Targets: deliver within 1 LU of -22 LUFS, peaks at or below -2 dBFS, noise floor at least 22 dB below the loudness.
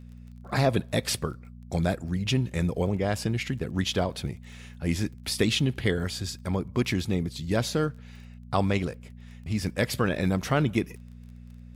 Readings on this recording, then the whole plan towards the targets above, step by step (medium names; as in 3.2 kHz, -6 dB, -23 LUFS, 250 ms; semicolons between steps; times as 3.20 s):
tick rate 26 per s; hum 60 Hz; highest harmonic 240 Hz; hum level -44 dBFS; loudness -28.0 LUFS; peak level -10.5 dBFS; loudness target -22.0 LUFS
-> de-click; de-hum 60 Hz, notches 4; trim +6 dB